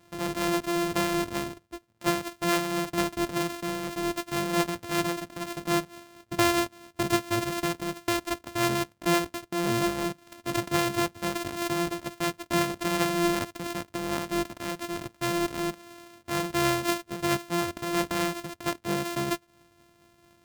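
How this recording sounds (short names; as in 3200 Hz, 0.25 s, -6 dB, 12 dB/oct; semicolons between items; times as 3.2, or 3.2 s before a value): a buzz of ramps at a fixed pitch in blocks of 128 samples; tremolo triangle 4.4 Hz, depth 40%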